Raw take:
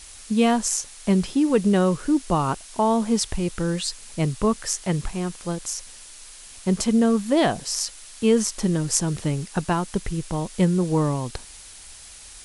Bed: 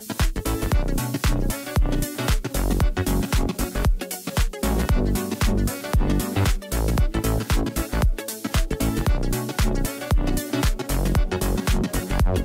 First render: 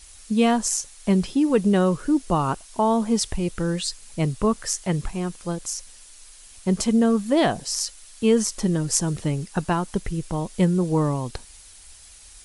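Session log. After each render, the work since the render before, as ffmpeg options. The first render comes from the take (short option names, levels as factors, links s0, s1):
-af "afftdn=nr=6:nf=-44"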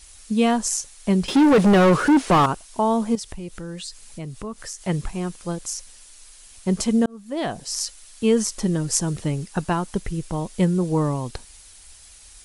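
-filter_complex "[0:a]asettb=1/sr,asplit=3[s0][s1][s2];[s0]atrim=end=1.284[s3];[s1]atrim=start=1.28:end=2.46,asetpts=PTS-STARTPTS,afade=t=in:d=0.004:c=qsin,afade=t=out:st=1.176:d=0.004:c=qsin,asplit=2[s4][s5];[s5]highpass=f=720:p=1,volume=31.6,asoftclip=type=tanh:threshold=0.422[s6];[s4][s6]amix=inputs=2:normalize=0,lowpass=f=1600:p=1,volume=0.501[s7];[s2]atrim=start=2.456[s8];[s3][s7]acrossfade=d=0.004:c1=hsin:c2=qsin[s9];[s9][s8]acrossfade=d=0.004:c1=qsin:c2=hsin,asettb=1/sr,asplit=3[s10][s11][s12];[s10]atrim=end=3.154[s13];[s11]atrim=start=3.15:end=4.81,asetpts=PTS-STARTPTS,afade=t=in:d=0.004:c=qsin,afade=t=out:st=1.656:d=0.004:c=qsin,acompressor=threshold=0.02:ratio=2.5:attack=3.2:release=140:knee=1:detection=peak[s14];[s12]atrim=start=4.806[s15];[s13][s14]acrossfade=d=0.004:c1=hsin:c2=qsin[s16];[s16][s15]acrossfade=d=0.004:c1=qsin:c2=hsin,asplit=2[s17][s18];[s17]atrim=end=7.06,asetpts=PTS-STARTPTS,afade=t=out:st=7.056:d=0.004:c=hsin[s19];[s18]atrim=start=7.06,asetpts=PTS-STARTPTS,afade=t=in:d=0.78[s20];[s19][s20]concat=n=2:v=0:a=1"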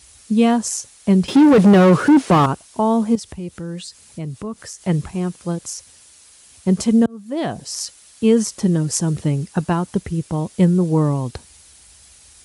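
-af "highpass=f=65:w=0.5412,highpass=f=65:w=1.3066,lowshelf=f=440:g=6.5"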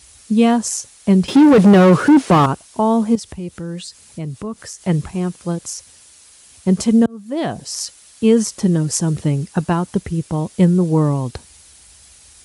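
-af "volume=1.19,alimiter=limit=0.891:level=0:latency=1"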